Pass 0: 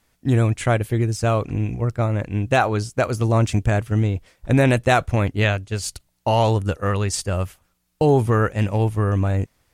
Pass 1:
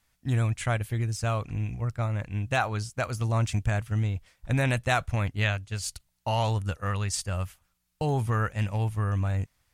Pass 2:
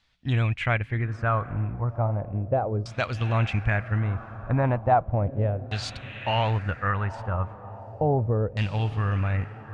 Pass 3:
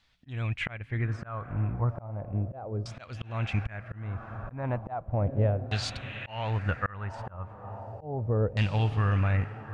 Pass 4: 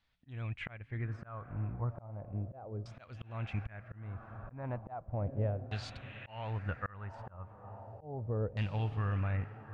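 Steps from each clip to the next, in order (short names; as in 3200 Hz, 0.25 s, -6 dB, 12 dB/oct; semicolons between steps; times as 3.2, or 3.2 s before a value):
bell 370 Hz -10.5 dB 1.6 oct; gain -5 dB
diffused feedback echo 0.806 s, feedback 56%, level -15 dB; LFO low-pass saw down 0.35 Hz 440–4100 Hz; gain +1.5 dB
auto swell 0.436 s
high shelf 4300 Hz -10 dB; gain -8 dB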